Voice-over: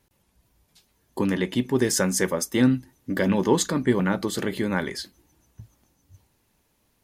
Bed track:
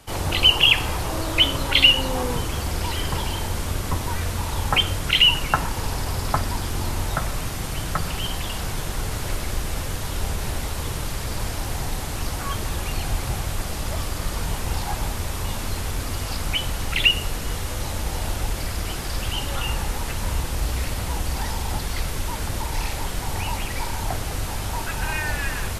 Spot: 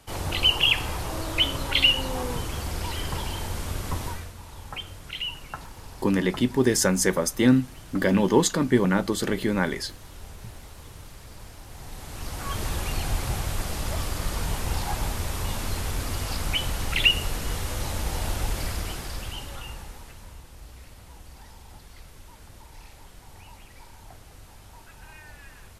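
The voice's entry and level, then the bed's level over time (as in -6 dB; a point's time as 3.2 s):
4.85 s, +1.0 dB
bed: 4.07 s -5 dB
4.33 s -16.5 dB
11.66 s -16.5 dB
12.63 s -2 dB
18.68 s -2 dB
20.41 s -20.5 dB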